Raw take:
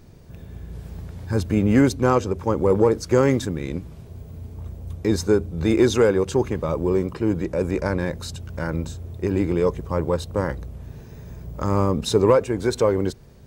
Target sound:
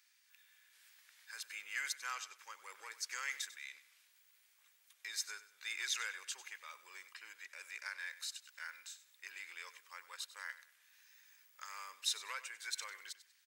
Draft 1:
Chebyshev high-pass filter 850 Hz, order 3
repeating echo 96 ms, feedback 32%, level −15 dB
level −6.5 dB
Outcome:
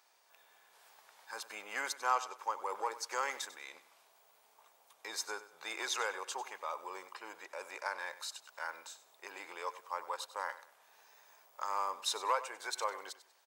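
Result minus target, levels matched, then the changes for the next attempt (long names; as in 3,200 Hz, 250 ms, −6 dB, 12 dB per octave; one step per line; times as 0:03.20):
1,000 Hz band +10.5 dB
change: Chebyshev high-pass filter 1,800 Hz, order 3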